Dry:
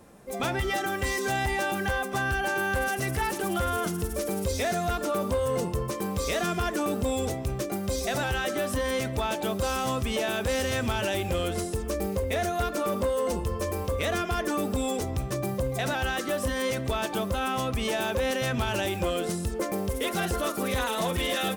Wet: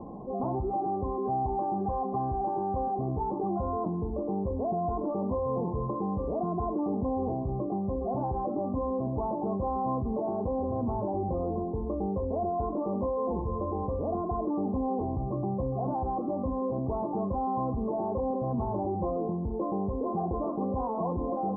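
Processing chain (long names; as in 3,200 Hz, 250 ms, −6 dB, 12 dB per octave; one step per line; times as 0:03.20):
Chebyshev low-pass with heavy ripple 1,100 Hz, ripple 6 dB
convolution reverb, pre-delay 3 ms, DRR 16.5 dB
envelope flattener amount 50%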